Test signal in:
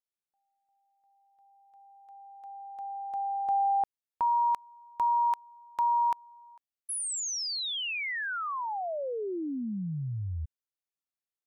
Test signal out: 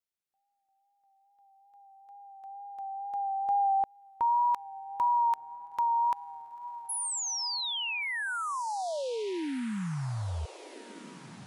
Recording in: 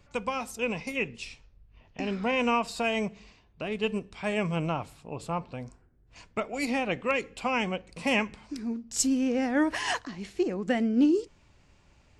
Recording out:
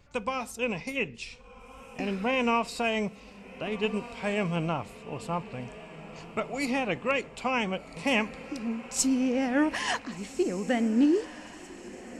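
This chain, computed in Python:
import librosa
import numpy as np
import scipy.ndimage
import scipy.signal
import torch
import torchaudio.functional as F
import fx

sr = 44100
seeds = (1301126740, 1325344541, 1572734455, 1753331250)

y = fx.echo_diffused(x, sr, ms=1522, feedback_pct=49, wet_db=-15.0)
y = fx.wow_flutter(y, sr, seeds[0], rate_hz=2.1, depth_cents=29.0)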